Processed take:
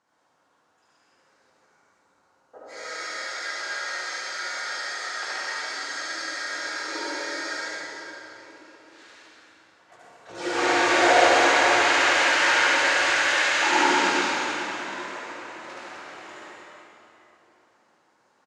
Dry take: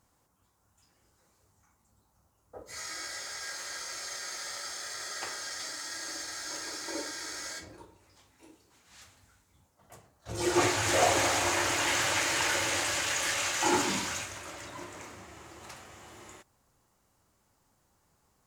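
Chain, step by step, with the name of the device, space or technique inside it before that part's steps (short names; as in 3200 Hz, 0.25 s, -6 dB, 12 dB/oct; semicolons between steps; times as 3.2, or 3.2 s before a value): station announcement (BPF 340–4500 Hz; bell 1600 Hz +4.5 dB 0.5 oct; loudspeakers at several distances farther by 25 m -2 dB, 43 m -4 dB; reverb RT60 3.4 s, pre-delay 66 ms, DRR -4.5 dB)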